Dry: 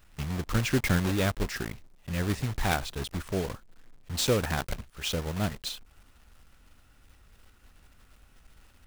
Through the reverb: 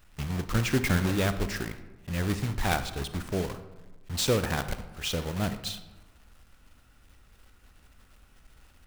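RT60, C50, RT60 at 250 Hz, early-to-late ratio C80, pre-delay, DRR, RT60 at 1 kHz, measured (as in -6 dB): 1.1 s, 11.5 dB, 1.2 s, 13.5 dB, 33 ms, 10.5 dB, 1.1 s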